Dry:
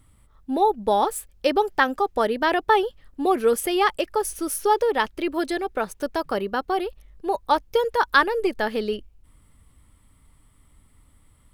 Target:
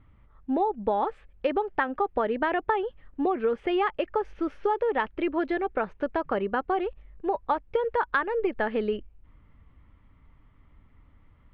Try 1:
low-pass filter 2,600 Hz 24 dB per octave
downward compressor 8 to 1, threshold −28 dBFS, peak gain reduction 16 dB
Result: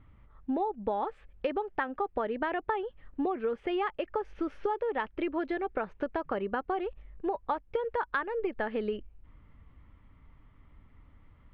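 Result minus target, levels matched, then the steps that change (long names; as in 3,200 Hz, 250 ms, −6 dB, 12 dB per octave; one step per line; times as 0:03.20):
downward compressor: peak gain reduction +5.5 dB
change: downward compressor 8 to 1, threshold −21.5 dBFS, peak gain reduction 10 dB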